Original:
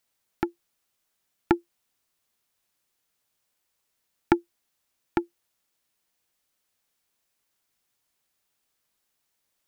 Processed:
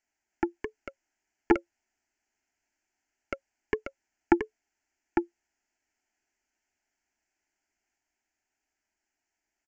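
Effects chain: echoes that change speed 0.303 s, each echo +4 st, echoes 2; downsampling 16000 Hz; fixed phaser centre 760 Hz, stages 8

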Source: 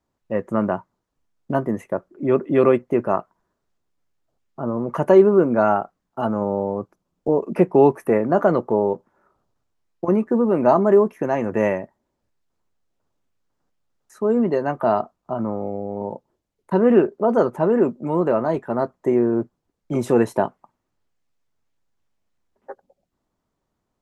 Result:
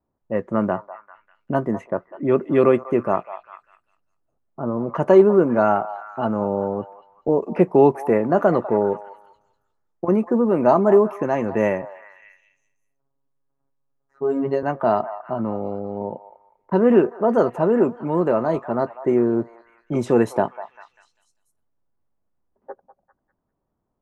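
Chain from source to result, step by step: 11.82–14.63 robotiser 137 Hz; low-pass opened by the level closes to 1100 Hz, open at -15.5 dBFS; delay with a stepping band-pass 0.198 s, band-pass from 890 Hz, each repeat 0.7 oct, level -11 dB

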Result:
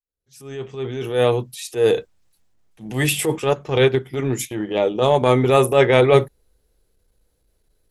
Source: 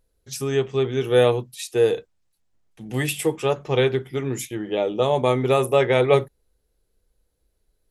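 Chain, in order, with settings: opening faded in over 2.27 s; transient shaper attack -9 dB, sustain +3 dB, from 3.38 s sustain -5 dB, from 5.2 s sustain 0 dB; gain +6 dB

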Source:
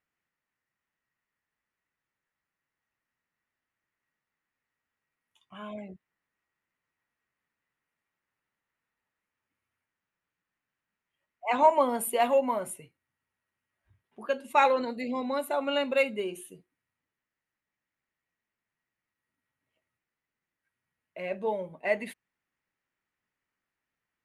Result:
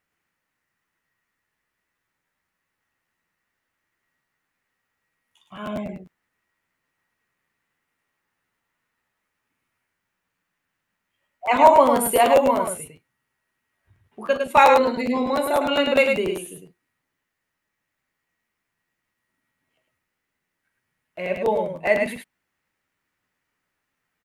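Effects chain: loudspeakers at several distances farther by 13 m -11 dB, 36 m -5 dB; crackling interface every 0.10 s, samples 512, repeat; gain +7.5 dB

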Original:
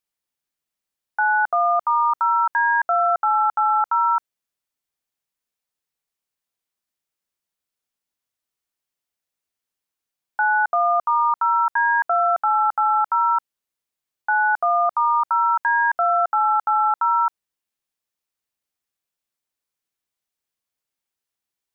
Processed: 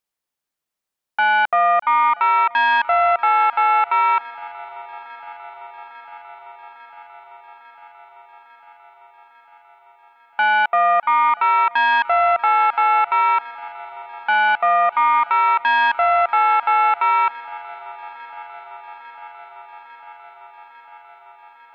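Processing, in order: self-modulated delay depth 0.09 ms; bell 810 Hz +4 dB 2.4 oct; on a send: swung echo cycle 0.85 s, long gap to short 3:1, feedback 74%, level -22.5 dB

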